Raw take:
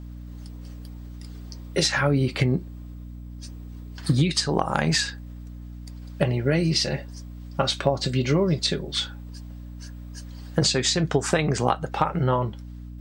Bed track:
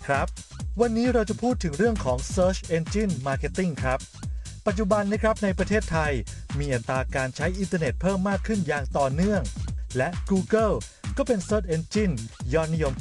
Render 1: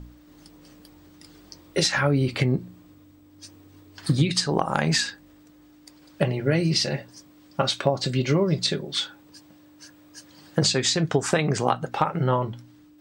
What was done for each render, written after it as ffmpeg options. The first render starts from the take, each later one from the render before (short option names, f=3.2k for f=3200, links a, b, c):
-af "bandreject=f=60:t=h:w=4,bandreject=f=120:t=h:w=4,bandreject=f=180:t=h:w=4,bandreject=f=240:t=h:w=4"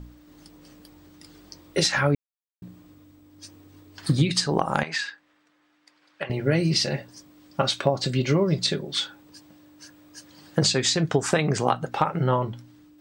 -filter_complex "[0:a]asettb=1/sr,asplit=3[a][b][c];[a]atrim=end=4.834[d];[b]atrim=start=4.83:end=6.3,asetpts=PTS-STARTPTS,afade=t=in:d=0.004:c=qsin,afade=t=out:st=1.466:d=0.004:c=qsin,bandpass=f=1.8k:t=q:w=0.94[e];[c]atrim=start=6.296[f];[d][e]acrossfade=d=0.004:c1=hsin:c2=qsin[g];[g][f]acrossfade=d=0.004:c1=qsin:c2=hsin,asplit=3[h][i][j];[h]atrim=end=2.15,asetpts=PTS-STARTPTS,afade=t=out:st=2.146:d=0.004:c=hsin[k];[i]atrim=start=2.15:end=2.62,asetpts=PTS-STARTPTS,volume=0[l];[j]atrim=start=2.62,asetpts=PTS-STARTPTS,afade=t=in:d=0.004:c=hsin[m];[k][l][m]concat=n=3:v=0:a=1"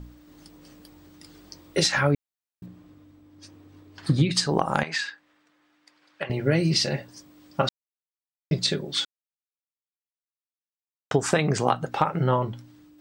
-filter_complex "[0:a]asettb=1/sr,asplit=3[a][b][c];[a]atrim=end=2.664[d];[b]atrim=start=2.66:end=4.32,asetpts=PTS-STARTPTS,afade=t=in:d=0.004:c=qsin,afade=t=out:st=1.656:d=0.004:c=qsin,lowpass=f=3.5k:p=1[e];[c]atrim=start=4.316[f];[d][e]acrossfade=d=0.004:c1=hsin:c2=qsin[g];[g][f]acrossfade=d=0.004:c1=qsin:c2=hsin,asplit=5[h][i][j][k][l];[h]atrim=end=7.69,asetpts=PTS-STARTPTS,afade=t=out:st=7.686:d=0.004:c=hsin[m];[i]atrim=start=7.69:end=8.51,asetpts=PTS-STARTPTS,volume=0[n];[j]atrim=start=8.51:end=9.05,asetpts=PTS-STARTPTS,afade=t=in:d=0.004:c=hsin,afade=t=out:st=0.536:d=0.004:c=hsin[o];[k]atrim=start=9.05:end=11.11,asetpts=PTS-STARTPTS,volume=0[p];[l]atrim=start=11.11,asetpts=PTS-STARTPTS,afade=t=in:d=0.004:c=hsin[q];[m][n][o][p][q]concat=n=5:v=0:a=1"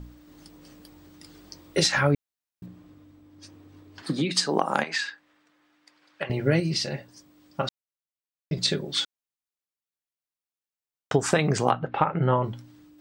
-filter_complex "[0:a]asettb=1/sr,asplit=3[a][b][c];[a]atrim=end=4.024[d];[b]atrim=start=4.02:end=5.04,asetpts=PTS-STARTPTS,afade=t=in:d=0.004:c=qsin,afade=t=out:st=1.016:d=0.004:c=qsin,highpass=f=200:w=0.5412,highpass=f=200:w=1.3066[e];[c]atrim=start=5.036[f];[d][e]acrossfade=d=0.004:c1=hsin:c2=qsin[g];[g][f]acrossfade=d=0.004:c1=qsin:c2=hsin,asettb=1/sr,asplit=3[h][i][j];[h]atrim=end=11.714[k];[i]atrim=start=11.71:end=12.44,asetpts=PTS-STARTPTS,afade=t=in:d=0.004:c=qsin,afade=t=out:st=0.726:d=0.004:c=qsin,lowpass=f=3.1k:w=0.5412,lowpass=f=3.1k:w=1.3066[l];[j]atrim=start=12.436[m];[k][l]acrossfade=d=0.004:c1=hsin:c2=qsin[n];[n][m]acrossfade=d=0.004:c1=qsin:c2=hsin,asplit=3[o][p][q];[o]atrim=end=6.602[r];[p]atrim=start=6.598:end=8.572,asetpts=PTS-STARTPTS,volume=-4.5dB[s];[q]atrim=start=8.568[t];[r][s]acrossfade=d=0.004:c1=hsin:c2=hsin[u];[u][t]acrossfade=d=0.004:c1=hsin:c2=hsin"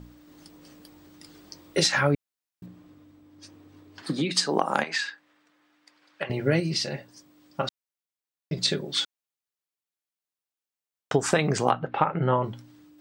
-af "lowshelf=f=69:g=-11"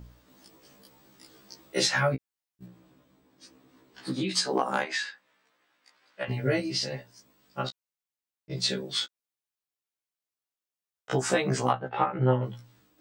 -af "afftfilt=real='re*1.73*eq(mod(b,3),0)':imag='im*1.73*eq(mod(b,3),0)':win_size=2048:overlap=0.75"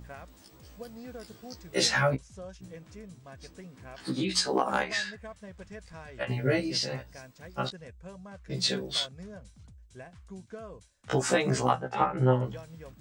-filter_complex "[1:a]volume=-21.5dB[a];[0:a][a]amix=inputs=2:normalize=0"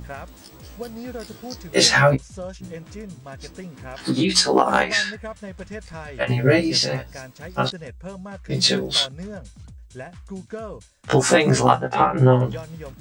-af "volume=10dB,alimiter=limit=-2dB:level=0:latency=1"